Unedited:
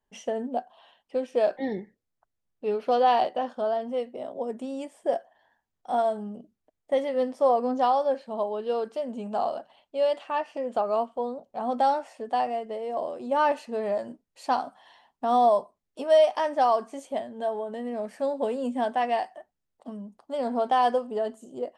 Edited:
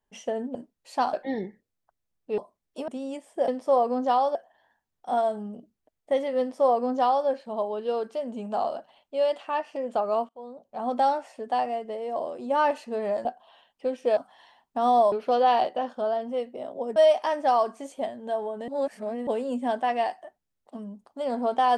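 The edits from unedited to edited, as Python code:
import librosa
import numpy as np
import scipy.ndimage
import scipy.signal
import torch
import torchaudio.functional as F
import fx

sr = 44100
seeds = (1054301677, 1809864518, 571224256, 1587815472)

y = fx.edit(x, sr, fx.swap(start_s=0.55, length_s=0.92, other_s=14.06, other_length_s=0.58),
    fx.swap(start_s=2.72, length_s=1.84, other_s=15.59, other_length_s=0.5),
    fx.duplicate(start_s=7.21, length_s=0.87, to_s=5.16),
    fx.fade_in_from(start_s=11.1, length_s=0.6, floor_db=-24.0),
    fx.reverse_span(start_s=17.81, length_s=0.59), tone=tone)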